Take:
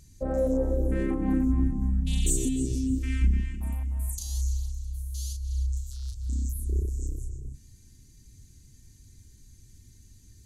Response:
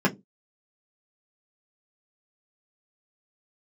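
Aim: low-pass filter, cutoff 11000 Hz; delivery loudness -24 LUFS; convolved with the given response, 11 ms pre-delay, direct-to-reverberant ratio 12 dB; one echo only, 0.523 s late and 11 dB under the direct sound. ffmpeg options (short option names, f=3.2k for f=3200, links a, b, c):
-filter_complex "[0:a]lowpass=11k,aecho=1:1:523:0.282,asplit=2[a][b];[1:a]atrim=start_sample=2205,adelay=11[c];[b][c]afir=irnorm=-1:irlink=0,volume=-26.5dB[d];[a][d]amix=inputs=2:normalize=0,volume=5.5dB"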